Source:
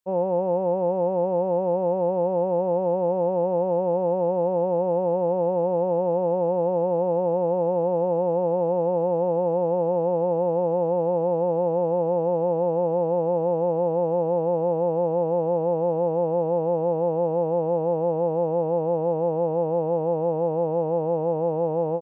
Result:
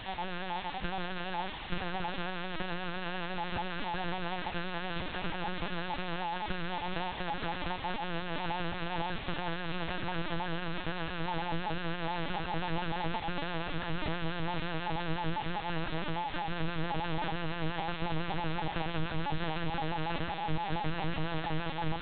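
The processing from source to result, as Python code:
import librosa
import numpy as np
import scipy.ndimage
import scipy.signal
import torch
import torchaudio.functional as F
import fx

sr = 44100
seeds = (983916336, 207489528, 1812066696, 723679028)

p1 = fx.spec_dropout(x, sr, seeds[0], share_pct=36)
p2 = fx.tube_stage(p1, sr, drive_db=27.0, bias=0.25)
p3 = fx.dereverb_blind(p2, sr, rt60_s=0.59)
p4 = fx.tilt_eq(p3, sr, slope=-3.0)
p5 = fx.sample_hold(p4, sr, seeds[1], rate_hz=1100.0, jitter_pct=0)
p6 = p4 + (p5 * librosa.db_to_amplitude(-11.0))
p7 = scipy.signal.sosfilt(scipy.signal.ellip(3, 1.0, 60, [160.0, 730.0], 'bandstop', fs=sr, output='sos'), p6)
p8 = fx.quant_dither(p7, sr, seeds[2], bits=6, dither='triangular')
p9 = p8 + fx.echo_feedback(p8, sr, ms=874, feedback_pct=55, wet_db=-10.0, dry=0)
y = fx.lpc_vocoder(p9, sr, seeds[3], excitation='pitch_kept', order=8)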